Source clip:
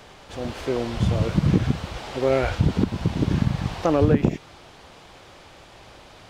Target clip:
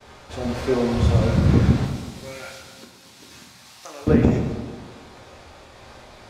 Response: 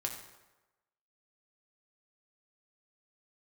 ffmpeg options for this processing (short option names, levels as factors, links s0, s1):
-filter_complex "[0:a]asettb=1/sr,asplit=3[s0][s1][s2];[s0]atrim=end=1.854[s3];[s1]atrim=start=1.85:end=4.07,asetpts=PTS-STARTPTS,afade=t=in:d=0.004:c=qsin,afade=t=out:st=2.216:d=0.004:c=qsin,aderivative[s4];[s2]atrim=start=4.066[s5];[s3][s4]acrossfade=d=0.004:c1=hsin:c2=qsin[s6];[s6][s5]acrossfade=d=0.004:c1=qsin:c2=hsin,agate=range=0.0224:threshold=0.00631:ratio=3:detection=peak,equalizer=f=3000:t=o:w=0.25:g=-5.5[s7];[1:a]atrim=start_sample=2205,asetrate=29106,aresample=44100[s8];[s7][s8]afir=irnorm=-1:irlink=0"